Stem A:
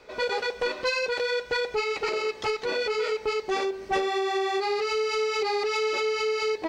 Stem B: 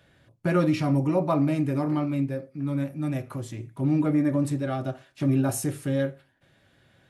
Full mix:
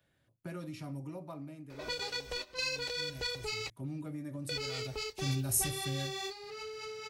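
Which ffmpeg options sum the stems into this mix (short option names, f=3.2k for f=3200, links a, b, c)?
-filter_complex "[0:a]equalizer=f=62:t=o:w=0.77:g=7.5,adelay=1700,volume=-2dB,asplit=3[a][b][c];[a]atrim=end=3.7,asetpts=PTS-STARTPTS,afade=t=out:st=3.696:d=0.004:c=hsin[d];[b]atrim=start=3.7:end=4.49,asetpts=PTS-STARTPTS,volume=0[e];[c]atrim=start=4.49,asetpts=PTS-STARTPTS,afade=t=in:d=0.004:c=hsin[f];[d][e][f]concat=n=3:v=0:a=1[g];[1:a]volume=6dB,afade=t=out:st=1.14:d=0.42:silence=0.375837,afade=t=in:st=2.62:d=0.66:silence=0.237137,afade=t=in:st=4.62:d=0.54:silence=0.375837,asplit=2[h][i];[i]apad=whole_len=369727[j];[g][j]sidechaingate=range=-13dB:threshold=-57dB:ratio=16:detection=peak[k];[k][h]amix=inputs=2:normalize=0,highshelf=f=9.8k:g=11.5,acrossover=split=130|3000[l][m][n];[m]acompressor=threshold=-41dB:ratio=6[o];[l][o][n]amix=inputs=3:normalize=0"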